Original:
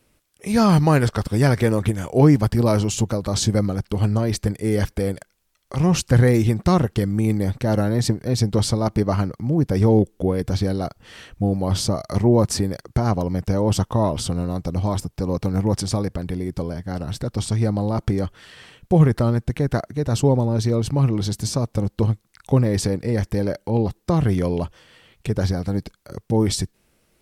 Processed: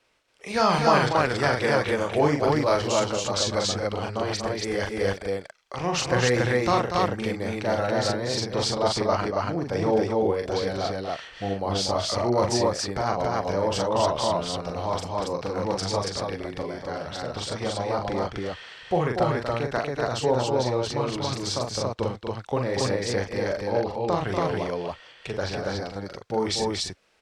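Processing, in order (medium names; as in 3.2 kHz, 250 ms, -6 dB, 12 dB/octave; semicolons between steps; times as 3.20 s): three-band isolator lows -16 dB, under 460 Hz, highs -23 dB, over 6.5 kHz; on a send: loudspeakers at several distances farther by 14 m -4 dB, 82 m -7 dB, 96 m -1 dB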